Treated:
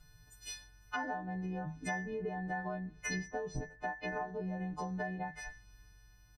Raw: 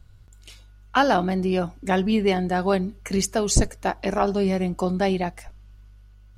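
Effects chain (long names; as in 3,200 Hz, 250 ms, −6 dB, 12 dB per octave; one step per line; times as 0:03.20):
every partial snapped to a pitch grid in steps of 3 semitones
treble cut that deepens with the level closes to 1,000 Hz, closed at −19 dBFS
comb filter 6.9 ms, depth 78%
downward compressor 6 to 1, threshold −28 dBFS, peak gain reduction 15 dB
tuned comb filter 160 Hz, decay 0.43 s, harmonics odd, mix 80%
level +4.5 dB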